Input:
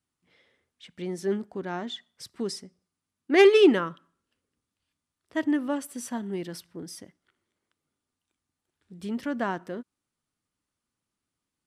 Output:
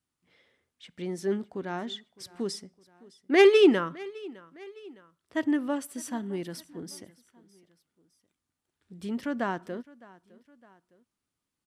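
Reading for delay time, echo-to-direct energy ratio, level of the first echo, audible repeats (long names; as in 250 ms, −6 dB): 610 ms, −21.0 dB, −22.0 dB, 2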